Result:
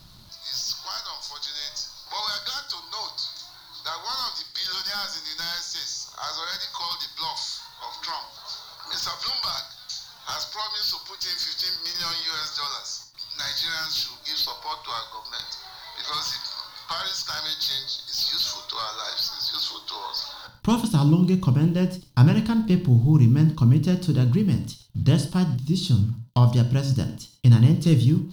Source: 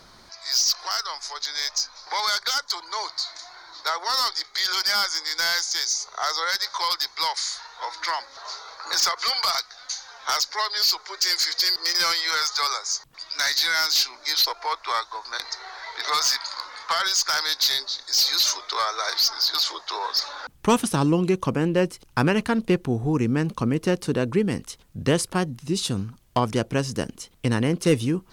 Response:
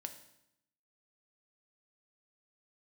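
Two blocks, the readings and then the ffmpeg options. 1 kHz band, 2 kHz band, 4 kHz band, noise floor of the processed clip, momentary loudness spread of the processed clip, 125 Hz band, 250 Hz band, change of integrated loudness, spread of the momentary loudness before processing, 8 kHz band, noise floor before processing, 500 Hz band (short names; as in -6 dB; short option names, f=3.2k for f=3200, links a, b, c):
-6.5 dB, -9.5 dB, -4.0 dB, -47 dBFS, 14 LU, +9.5 dB, +2.0 dB, -1.0 dB, 11 LU, -9.5 dB, -52 dBFS, -7.5 dB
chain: -filter_complex "[0:a]acrusher=bits=7:mix=0:aa=0.5,lowshelf=f=120:g=10.5,acrossover=split=2600[a][b];[b]acompressor=threshold=-26dB:ratio=4:attack=1:release=60[c];[a][c]amix=inputs=2:normalize=0,equalizer=f=125:t=o:w=1:g=10,equalizer=f=500:t=o:w=1:g=-7,equalizer=f=2k:t=o:w=1:g=-9,equalizer=f=4k:t=o:w=1:g=9,equalizer=f=8k:t=o:w=1:g=-7,equalizer=f=16k:t=o:w=1:g=5[d];[1:a]atrim=start_sample=2205,afade=t=out:st=0.2:d=0.01,atrim=end_sample=9261[e];[d][e]afir=irnorm=-1:irlink=0"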